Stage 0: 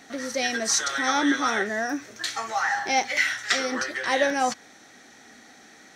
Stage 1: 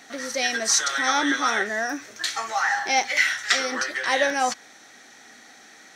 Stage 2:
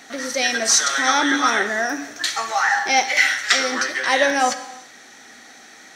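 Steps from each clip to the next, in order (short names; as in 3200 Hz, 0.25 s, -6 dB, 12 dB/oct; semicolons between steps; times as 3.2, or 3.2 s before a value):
low shelf 440 Hz -8.5 dB; gain +3 dB
non-linear reverb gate 0.4 s falling, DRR 10 dB; gain +4 dB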